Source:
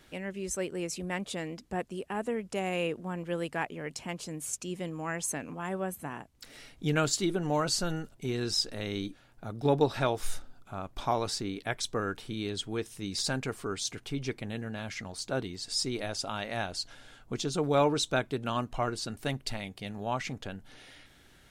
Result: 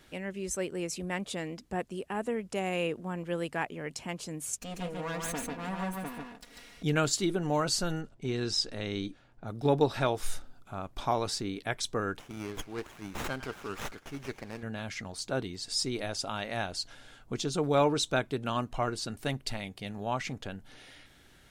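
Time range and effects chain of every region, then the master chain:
4.59–6.83 minimum comb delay 4.2 ms + high shelf 5600 Hz -4.5 dB + echo 0.144 s -3 dB
8.01–9.48 LPF 7800 Hz + mismatched tape noise reduction decoder only
12.19–14.63 low shelf 320 Hz -11.5 dB + delay with a stepping band-pass 0.101 s, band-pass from 1200 Hz, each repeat 0.7 oct, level -10 dB + running maximum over 9 samples
whole clip: dry

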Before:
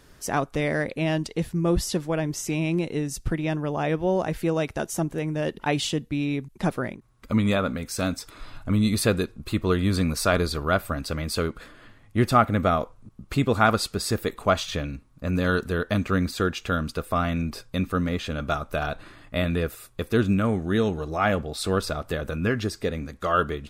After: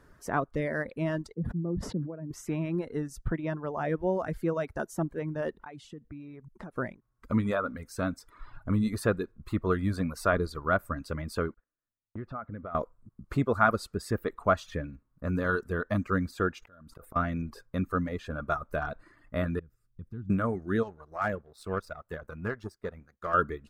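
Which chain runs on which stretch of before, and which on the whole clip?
1.34–2.31 band-pass 200 Hz, Q 1.5 + sustainer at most 35 dB/s
5.56–6.76 high shelf 12000 Hz -11 dB + compressor 5:1, threshold -36 dBFS
11.54–12.75 gate -40 dBFS, range -31 dB + compressor 3:1, threshold -34 dBFS + air absorption 340 m
16.62–17.16 high shelf 11000 Hz +7 dB + flipped gate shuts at -23 dBFS, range -37 dB + fast leveller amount 100%
19.59–20.3 EQ curve 160 Hz 0 dB, 620 Hz -23 dB, 2900 Hz -17 dB, 11000 Hz -25 dB + compressor 2:1, threshold -36 dBFS
20.83–23.34 bell 280 Hz -9.5 dB 0.28 oct + power-law curve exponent 1.4 + hard clip -16 dBFS
whole clip: notch 790 Hz, Q 12; reverb removal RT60 0.96 s; resonant high shelf 2100 Hz -9 dB, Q 1.5; gain -4 dB

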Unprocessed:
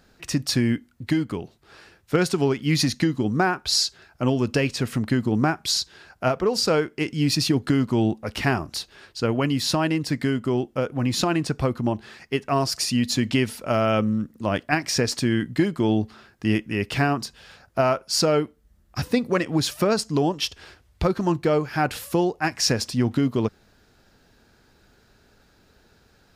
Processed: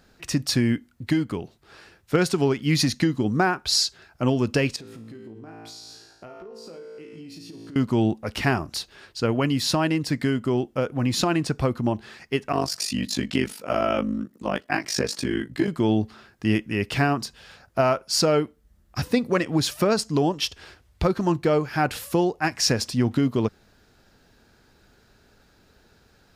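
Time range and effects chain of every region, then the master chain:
4.76–7.76 bell 360 Hz +8.5 dB 1.5 oct + resonator 56 Hz, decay 0.95 s, mix 90% + compressor 10:1, threshold -38 dBFS
12.52–15.68 HPF 160 Hz + AM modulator 49 Hz, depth 90% + doubler 15 ms -4 dB
whole clip: dry

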